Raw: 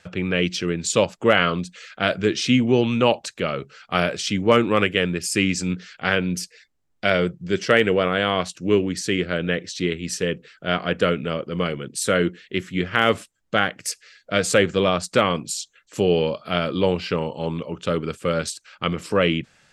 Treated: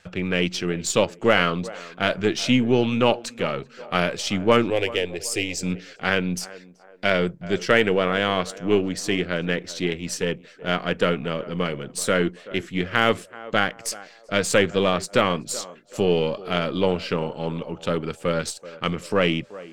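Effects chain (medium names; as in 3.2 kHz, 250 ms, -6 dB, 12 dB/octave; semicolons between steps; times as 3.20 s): partial rectifier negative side -3 dB; 4.70–5.63 s: static phaser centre 510 Hz, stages 4; band-passed feedback delay 381 ms, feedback 45%, band-pass 640 Hz, level -16 dB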